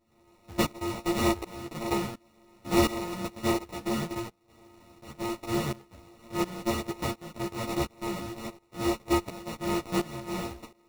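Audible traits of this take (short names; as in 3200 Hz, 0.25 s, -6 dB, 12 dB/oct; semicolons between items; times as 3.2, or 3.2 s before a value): a buzz of ramps at a fixed pitch in blocks of 128 samples; tremolo saw up 1.4 Hz, depth 90%; aliases and images of a low sample rate 1600 Hz, jitter 0%; a shimmering, thickened sound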